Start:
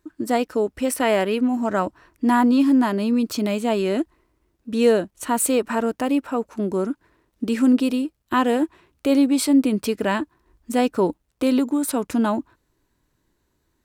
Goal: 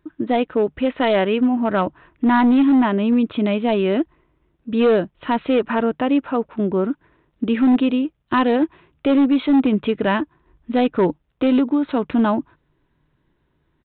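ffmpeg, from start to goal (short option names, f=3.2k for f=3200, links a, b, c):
-af "equalizer=f=150:t=o:w=0.25:g=10,aresample=8000,volume=14dB,asoftclip=hard,volume=-14dB,aresample=44100,volume=3dB"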